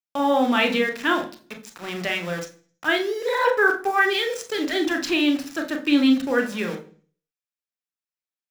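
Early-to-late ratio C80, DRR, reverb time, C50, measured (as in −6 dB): 17.0 dB, 4.5 dB, 0.45 s, 12.0 dB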